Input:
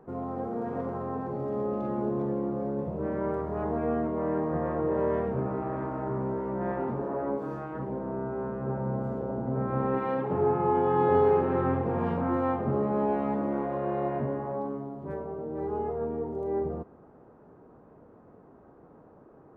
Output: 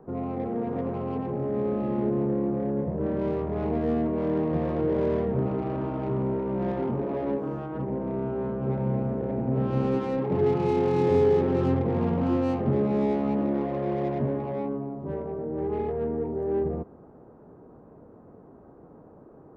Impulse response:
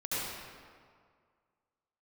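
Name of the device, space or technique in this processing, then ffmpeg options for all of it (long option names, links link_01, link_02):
one-band saturation: -filter_complex "[0:a]tiltshelf=frequency=1200:gain=5,acrossover=split=530|2900[link_01][link_02][link_03];[link_02]asoftclip=type=tanh:threshold=-34.5dB[link_04];[link_01][link_04][link_03]amix=inputs=3:normalize=0"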